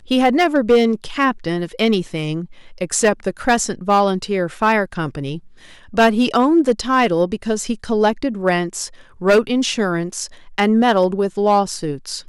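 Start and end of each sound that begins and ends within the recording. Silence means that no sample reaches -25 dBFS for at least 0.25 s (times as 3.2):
2.81–5.38
5.94–8.87
9.22–10.26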